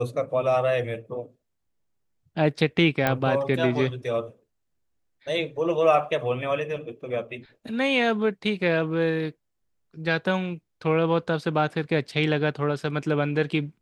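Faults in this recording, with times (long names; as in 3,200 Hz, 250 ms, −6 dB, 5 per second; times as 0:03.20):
0:03.07: click −9 dBFS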